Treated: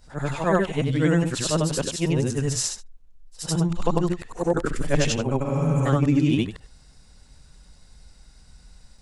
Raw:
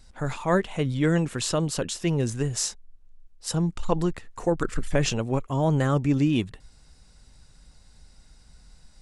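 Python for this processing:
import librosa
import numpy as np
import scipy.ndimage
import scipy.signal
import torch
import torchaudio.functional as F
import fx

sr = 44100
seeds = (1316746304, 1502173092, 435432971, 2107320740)

y = fx.frame_reverse(x, sr, frame_ms=200.0)
y = fx.spec_repair(y, sr, seeds[0], start_s=5.47, length_s=0.36, low_hz=220.0, high_hz=5000.0, source='before')
y = y * 10.0 ** (5.5 / 20.0)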